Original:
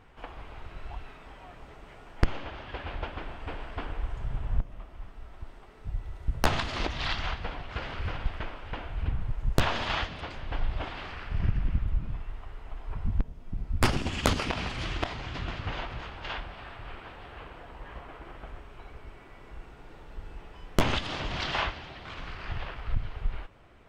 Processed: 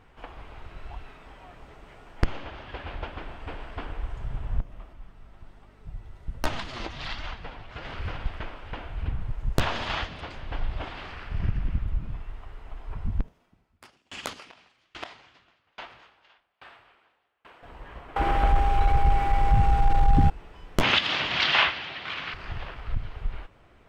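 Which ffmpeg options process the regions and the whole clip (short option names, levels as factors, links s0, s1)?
-filter_complex "[0:a]asettb=1/sr,asplit=3[s0][s1][s2];[s0]atrim=end=4.934[s3];[s1]atrim=start=4.93:end=7.85,asetpts=PTS-STARTPTS,afade=t=in:d=0.004:c=qsin,afade=t=out:st=2.916:d=0.004:c=qsin,flanger=delay=3.2:depth=5.8:regen=47:speed=1.3:shape=sinusoidal,aeval=exprs='val(0)+0.00178*(sin(2*PI*50*n/s)+sin(2*PI*2*50*n/s)/2+sin(2*PI*3*50*n/s)/3+sin(2*PI*4*50*n/s)/4+sin(2*PI*5*50*n/s)/5)':c=same[s4];[s2]atrim=start=7.846[s5];[s3][s4]acrossfade=d=0.004:c1=hsin:c2=qsin[s6];[s6][s5]acrossfade=d=0.004:c1=qsin:c2=hsin,asettb=1/sr,asplit=3[s7][s8][s9];[s7]atrim=end=13.284[s10];[s8]atrim=start=13.28:end=17.63,asetpts=PTS-STARTPTS,afade=t=in:d=0.004:c=qsin,afade=t=out:st=4.346:d=0.004:c=qsin,acompressor=mode=upward:threshold=0.0126:ratio=2.5:attack=3.2:release=140:knee=2.83:detection=peak,highpass=f=660:p=1,aeval=exprs='val(0)*pow(10,-35*if(lt(mod(1.2*n/s,1),2*abs(1.2)/1000),1-mod(1.2*n/s,1)/(2*abs(1.2)/1000),(mod(1.2*n/s,1)-2*abs(1.2)/1000)/(1-2*abs(1.2)/1000))/20)':c=same[s11];[s9]atrim=start=17.626[s12];[s10][s11]acrossfade=d=0.004:c1=hsin:c2=qsin[s13];[s13][s12]acrossfade=d=0.004:c1=qsin:c2=hsin,asettb=1/sr,asplit=3[s14][s15][s16];[s14]atrim=end=18.164[s17];[s15]atrim=start=18.16:end=20.3,asetpts=PTS-STARTPTS,afade=t=in:d=0.004:c=qsin,afade=t=out:st=2.136:d=0.004:c=qsin,asubboost=boost=10:cutoff=110,aeval=exprs='0.211*sin(PI/2*5.62*val(0)/0.211)':c=same,aeval=exprs='val(0)+0.0562*sin(2*PI*800*n/s)':c=same[s18];[s16]atrim=start=20.296[s19];[s17][s18]acrossfade=d=0.004:c1=hsin:c2=qsin[s20];[s20][s19]acrossfade=d=0.004:c1=qsin:c2=hsin,asettb=1/sr,asplit=3[s21][s22][s23];[s21]atrim=end=20.834[s24];[s22]atrim=start=20.83:end=22.34,asetpts=PTS-STARTPTS,afade=t=in:d=0.004:c=qsin,afade=t=out:st=1.506:d=0.004:c=qsin,highpass=120,lowpass=6000,equalizer=f=2700:w=0.48:g=12[s25];[s23]atrim=start=22.336[s26];[s24][s25]acrossfade=d=0.004:c1=hsin:c2=qsin[s27];[s27][s26]acrossfade=d=0.004:c1=qsin:c2=hsin"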